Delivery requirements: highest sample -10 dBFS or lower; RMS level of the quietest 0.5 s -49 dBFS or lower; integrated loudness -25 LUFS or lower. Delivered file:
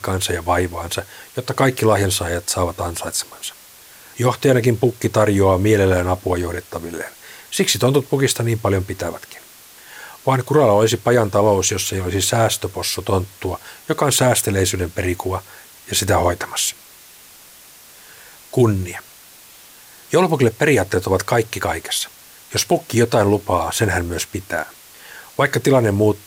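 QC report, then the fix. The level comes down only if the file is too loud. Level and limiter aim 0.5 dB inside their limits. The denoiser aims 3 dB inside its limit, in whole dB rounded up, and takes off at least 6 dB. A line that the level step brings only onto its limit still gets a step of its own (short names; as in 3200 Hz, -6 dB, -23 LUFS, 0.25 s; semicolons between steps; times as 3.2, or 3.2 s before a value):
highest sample -4.5 dBFS: fail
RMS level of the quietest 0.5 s -44 dBFS: fail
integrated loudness -18.5 LUFS: fail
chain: gain -7 dB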